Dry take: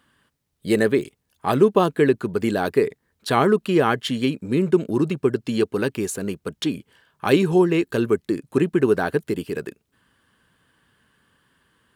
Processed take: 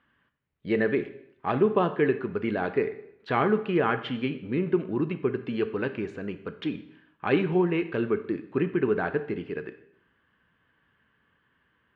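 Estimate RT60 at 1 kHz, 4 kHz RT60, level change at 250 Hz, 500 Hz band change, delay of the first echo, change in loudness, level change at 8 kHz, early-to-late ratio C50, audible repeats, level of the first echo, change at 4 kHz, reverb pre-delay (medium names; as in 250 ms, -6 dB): 0.75 s, 0.75 s, -6.5 dB, -6.5 dB, no echo, -6.0 dB, under -30 dB, 13.0 dB, no echo, no echo, -10.5 dB, 5 ms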